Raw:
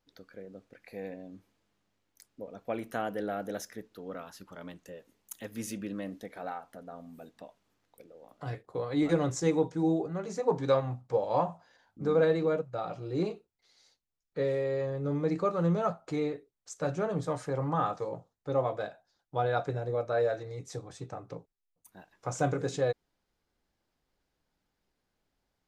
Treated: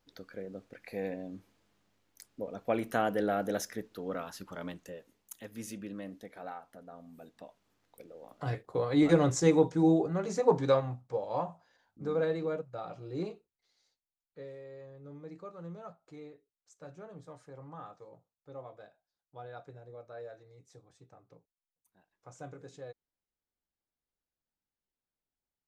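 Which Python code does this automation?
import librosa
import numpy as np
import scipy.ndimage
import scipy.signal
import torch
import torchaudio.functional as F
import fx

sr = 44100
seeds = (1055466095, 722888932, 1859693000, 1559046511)

y = fx.gain(x, sr, db=fx.line((4.66, 4.0), (5.42, -4.5), (6.99, -4.5), (8.14, 3.0), (10.5, 3.0), (11.13, -5.5), (13.22, -5.5), (14.58, -17.0)))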